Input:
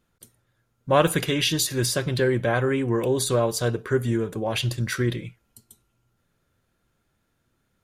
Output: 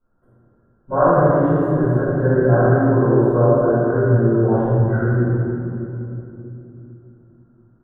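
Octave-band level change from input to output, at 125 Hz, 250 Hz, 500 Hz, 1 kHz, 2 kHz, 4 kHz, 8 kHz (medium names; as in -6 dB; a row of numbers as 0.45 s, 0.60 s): +10.0 dB, +9.0 dB, +8.0 dB, +8.0 dB, +1.0 dB, under -35 dB, under -40 dB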